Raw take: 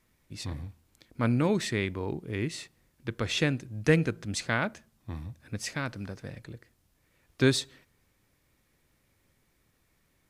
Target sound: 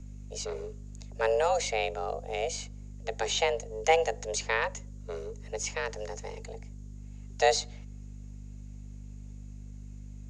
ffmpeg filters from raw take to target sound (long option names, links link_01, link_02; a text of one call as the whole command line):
ffmpeg -i in.wav -filter_complex "[0:a]afreqshift=330,lowpass=frequency=6800:width_type=q:width=9.4,aeval=exprs='val(0)+0.00891*(sin(2*PI*50*n/s)+sin(2*PI*2*50*n/s)/2+sin(2*PI*3*50*n/s)/3+sin(2*PI*4*50*n/s)/4+sin(2*PI*5*50*n/s)/5)':channel_layout=same,acrossover=split=110|890|4500[link_01][link_02][link_03][link_04];[link_04]acompressor=threshold=-40dB:ratio=6[link_05];[link_01][link_02][link_03][link_05]amix=inputs=4:normalize=0,volume=-1dB" out.wav